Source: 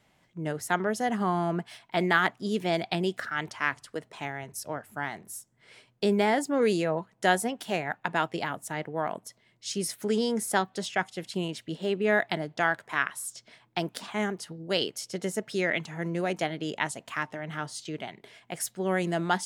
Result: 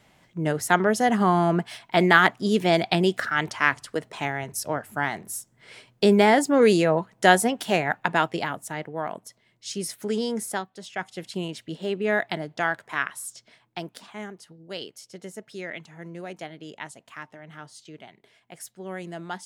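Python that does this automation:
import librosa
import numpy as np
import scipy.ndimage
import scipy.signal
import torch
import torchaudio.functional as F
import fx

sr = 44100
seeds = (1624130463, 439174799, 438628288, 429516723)

y = fx.gain(x, sr, db=fx.line((7.93, 7.0), (8.9, 0.0), (10.45, 0.0), (10.74, -9.5), (11.15, 0.5), (13.26, 0.5), (14.26, -8.0)))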